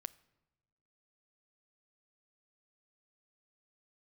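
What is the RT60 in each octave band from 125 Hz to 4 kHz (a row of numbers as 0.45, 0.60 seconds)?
1.5, 1.5, 1.2, 1.0, 0.90, 0.70 seconds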